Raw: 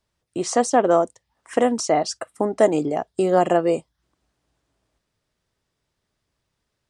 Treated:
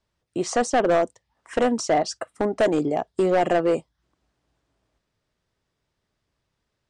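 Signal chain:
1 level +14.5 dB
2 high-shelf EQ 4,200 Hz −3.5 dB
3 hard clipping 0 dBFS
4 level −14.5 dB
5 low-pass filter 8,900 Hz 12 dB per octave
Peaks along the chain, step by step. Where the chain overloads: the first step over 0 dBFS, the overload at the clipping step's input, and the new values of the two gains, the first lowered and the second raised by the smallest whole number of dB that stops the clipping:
+10.0, +10.0, 0.0, −14.5, −14.0 dBFS
step 1, 10.0 dB
step 1 +4.5 dB, step 4 −4.5 dB

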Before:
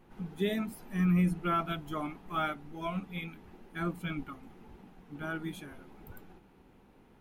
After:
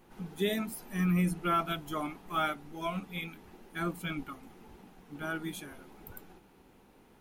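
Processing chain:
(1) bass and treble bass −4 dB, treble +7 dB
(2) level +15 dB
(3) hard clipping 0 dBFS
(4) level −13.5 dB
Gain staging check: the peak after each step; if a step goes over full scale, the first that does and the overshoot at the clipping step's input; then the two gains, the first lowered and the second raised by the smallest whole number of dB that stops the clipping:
−19.5, −4.5, −4.5, −18.0 dBFS
no step passes full scale

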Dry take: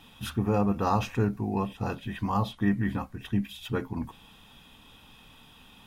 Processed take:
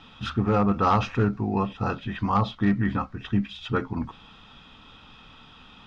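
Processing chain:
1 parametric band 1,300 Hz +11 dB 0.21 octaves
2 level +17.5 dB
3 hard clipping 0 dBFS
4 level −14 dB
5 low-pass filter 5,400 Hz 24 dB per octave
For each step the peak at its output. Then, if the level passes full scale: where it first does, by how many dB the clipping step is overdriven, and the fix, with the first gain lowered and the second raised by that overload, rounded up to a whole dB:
−12.5, +5.0, 0.0, −14.0, −13.5 dBFS
step 2, 5.0 dB
step 2 +12.5 dB, step 4 −9 dB

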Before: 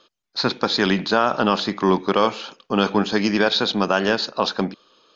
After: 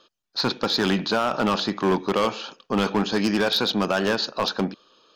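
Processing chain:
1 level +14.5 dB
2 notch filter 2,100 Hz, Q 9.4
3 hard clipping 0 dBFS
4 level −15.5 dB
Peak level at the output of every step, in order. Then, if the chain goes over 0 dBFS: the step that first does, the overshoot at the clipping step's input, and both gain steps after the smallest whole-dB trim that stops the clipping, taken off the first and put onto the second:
+10.0, +10.0, 0.0, −15.5 dBFS
step 1, 10.0 dB
step 1 +4.5 dB, step 4 −5.5 dB

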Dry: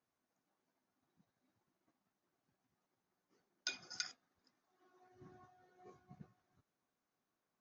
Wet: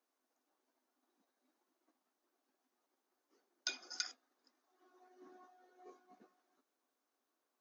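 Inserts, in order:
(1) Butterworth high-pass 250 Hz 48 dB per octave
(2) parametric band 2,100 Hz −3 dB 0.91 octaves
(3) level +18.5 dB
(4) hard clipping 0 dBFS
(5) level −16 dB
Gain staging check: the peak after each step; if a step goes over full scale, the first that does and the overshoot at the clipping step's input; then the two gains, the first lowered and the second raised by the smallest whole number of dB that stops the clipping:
−22.0, −22.0, −3.5, −3.5, −19.5 dBFS
no step passes full scale

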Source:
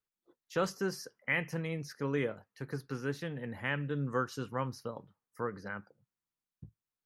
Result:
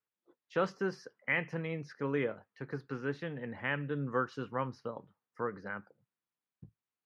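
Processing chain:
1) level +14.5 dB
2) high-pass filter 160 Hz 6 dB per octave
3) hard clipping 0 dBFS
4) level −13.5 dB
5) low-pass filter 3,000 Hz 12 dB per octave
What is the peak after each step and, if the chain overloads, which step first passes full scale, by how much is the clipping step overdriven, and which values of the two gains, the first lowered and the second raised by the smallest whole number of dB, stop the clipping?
−3.5, −3.5, −3.5, −17.0, −18.0 dBFS
no step passes full scale

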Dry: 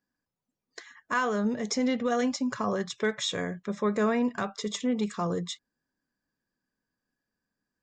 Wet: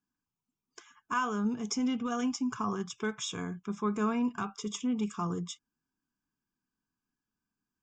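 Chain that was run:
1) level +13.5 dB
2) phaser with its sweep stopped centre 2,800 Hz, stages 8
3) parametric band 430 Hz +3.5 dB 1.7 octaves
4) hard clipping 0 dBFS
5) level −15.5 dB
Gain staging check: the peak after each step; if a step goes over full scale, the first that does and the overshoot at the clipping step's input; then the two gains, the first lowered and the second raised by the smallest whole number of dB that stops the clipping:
−4.5, −5.0, −4.0, −4.0, −19.5 dBFS
no step passes full scale

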